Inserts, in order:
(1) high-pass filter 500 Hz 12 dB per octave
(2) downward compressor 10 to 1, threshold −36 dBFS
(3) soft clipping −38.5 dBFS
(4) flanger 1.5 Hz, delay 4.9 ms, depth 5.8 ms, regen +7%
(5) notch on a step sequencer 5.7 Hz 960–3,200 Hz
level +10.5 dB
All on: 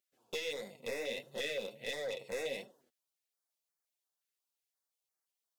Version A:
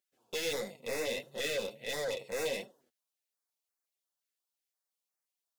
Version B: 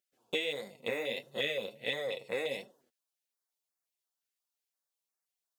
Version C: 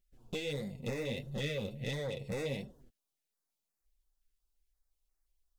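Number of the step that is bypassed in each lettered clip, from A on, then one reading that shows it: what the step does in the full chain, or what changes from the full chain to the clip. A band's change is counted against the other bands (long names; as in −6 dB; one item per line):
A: 2, average gain reduction 8.0 dB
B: 3, distortion level −9 dB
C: 1, 125 Hz band +21.5 dB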